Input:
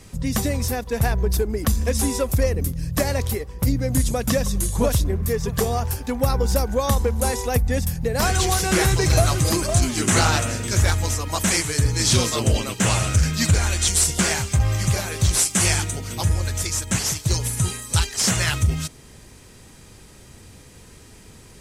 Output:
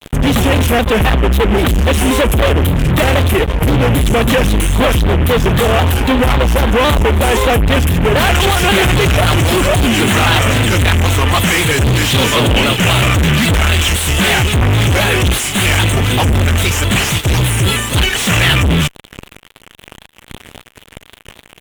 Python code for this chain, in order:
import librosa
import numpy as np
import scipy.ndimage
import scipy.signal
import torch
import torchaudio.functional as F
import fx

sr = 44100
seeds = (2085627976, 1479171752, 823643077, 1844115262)

y = fx.fuzz(x, sr, gain_db=38.0, gate_db=-39.0)
y = fx.high_shelf_res(y, sr, hz=3900.0, db=-7.0, q=3.0)
y = fx.vibrato_shape(y, sr, shape='square', rate_hz=3.8, depth_cents=100.0)
y = F.gain(torch.from_numpy(y), 3.5).numpy()